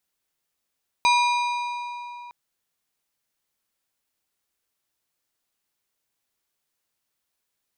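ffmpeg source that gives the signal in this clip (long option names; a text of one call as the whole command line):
ffmpeg -f lavfi -i "aevalsrc='0.158*pow(10,-3*t/3.32)*sin(2*PI*967*t)+0.0944*pow(10,-3*t/2.522)*sin(2*PI*2417.5*t)+0.0562*pow(10,-3*t/2.19)*sin(2*PI*3868*t)+0.0335*pow(10,-3*t/2.049)*sin(2*PI*4835*t)+0.02*pow(10,-3*t/1.893)*sin(2*PI*6285.5*t)+0.0119*pow(10,-3*t/1.747)*sin(2*PI*8219.5*t)+0.00708*pow(10,-3*t/1.717)*sin(2*PI*8703*t)':duration=1.26:sample_rate=44100" out.wav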